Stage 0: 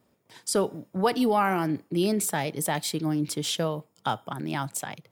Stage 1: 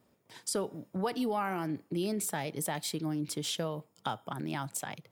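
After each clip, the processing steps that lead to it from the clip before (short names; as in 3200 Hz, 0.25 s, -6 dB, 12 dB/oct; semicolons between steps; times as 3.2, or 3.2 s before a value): compressor 2:1, threshold -33 dBFS, peak gain reduction 8.5 dB; gain -1.5 dB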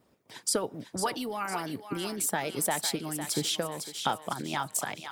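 harmonic-percussive split harmonic -11 dB; thinning echo 0.504 s, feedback 46%, high-pass 940 Hz, level -7 dB; gain +6.5 dB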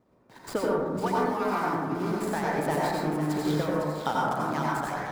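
median filter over 15 samples; plate-style reverb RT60 1.3 s, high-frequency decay 0.25×, pre-delay 75 ms, DRR -5 dB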